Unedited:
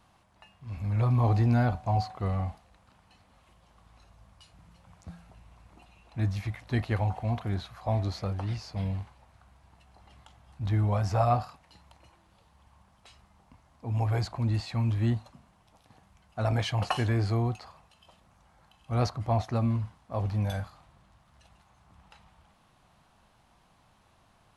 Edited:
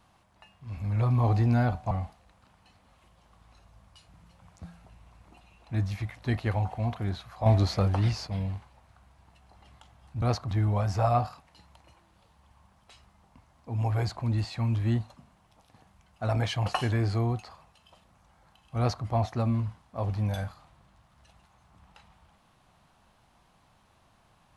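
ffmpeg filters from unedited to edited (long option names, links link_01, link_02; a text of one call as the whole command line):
ffmpeg -i in.wav -filter_complex "[0:a]asplit=6[link_01][link_02][link_03][link_04][link_05][link_06];[link_01]atrim=end=1.912[link_07];[link_02]atrim=start=2.358:end=7.912[link_08];[link_03]atrim=start=7.908:end=8.722,asetpts=PTS-STARTPTS,volume=7dB[link_09];[link_04]atrim=start=8.718:end=10.672[link_10];[link_05]atrim=start=18.938:end=19.232[link_11];[link_06]atrim=start=10.668[link_12];[link_07][link_08]acrossfade=duration=0.004:curve1=hsin:curve2=hsin[link_13];[link_13][link_09]acrossfade=duration=0.004:curve1=hsin:curve2=hsin[link_14];[link_14][link_10]acrossfade=duration=0.004:curve1=hsin:curve2=hsin[link_15];[link_15][link_11]acrossfade=duration=0.004:curve1=hsin:curve2=hsin[link_16];[link_16][link_12]acrossfade=duration=0.004:curve1=hsin:curve2=hsin" out.wav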